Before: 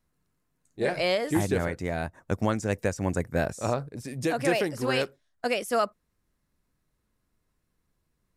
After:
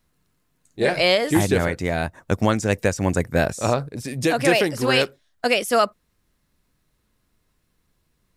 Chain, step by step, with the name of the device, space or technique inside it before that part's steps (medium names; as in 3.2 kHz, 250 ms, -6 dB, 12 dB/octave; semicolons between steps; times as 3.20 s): presence and air boost (peaking EQ 3.4 kHz +4.5 dB 1.3 oct; treble shelf 11 kHz +3.5 dB); trim +6.5 dB